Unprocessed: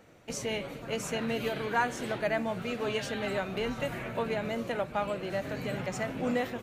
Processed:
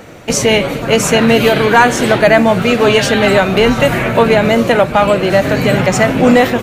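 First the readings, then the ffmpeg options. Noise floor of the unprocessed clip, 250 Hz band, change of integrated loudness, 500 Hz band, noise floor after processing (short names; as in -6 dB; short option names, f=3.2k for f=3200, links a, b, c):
-45 dBFS, +22.5 dB, +22.0 dB, +22.0 dB, -22 dBFS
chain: -af "apsyclip=24dB,volume=-1.5dB"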